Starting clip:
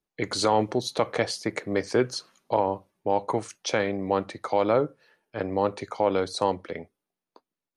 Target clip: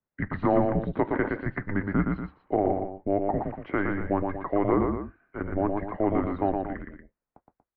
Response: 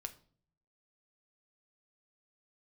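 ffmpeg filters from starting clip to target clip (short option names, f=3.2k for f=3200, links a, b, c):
-af "asubboost=boost=7.5:cutoff=110,aecho=1:1:116.6|236.2:0.631|0.282,highpass=f=180:t=q:w=0.5412,highpass=f=180:t=q:w=1.307,lowpass=f=2.2k:t=q:w=0.5176,lowpass=f=2.2k:t=q:w=0.7071,lowpass=f=2.2k:t=q:w=1.932,afreqshift=-200"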